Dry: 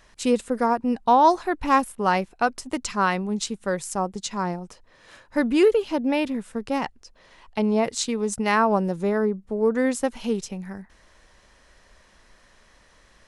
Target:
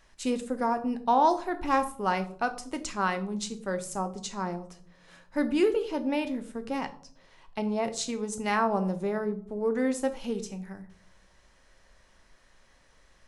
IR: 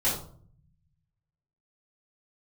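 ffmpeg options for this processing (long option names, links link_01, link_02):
-filter_complex "[0:a]asplit=2[link_01][link_02];[link_02]equalizer=frequency=6600:width_type=o:width=0.77:gain=2.5[link_03];[1:a]atrim=start_sample=2205[link_04];[link_03][link_04]afir=irnorm=-1:irlink=0,volume=-17dB[link_05];[link_01][link_05]amix=inputs=2:normalize=0,volume=-7.5dB"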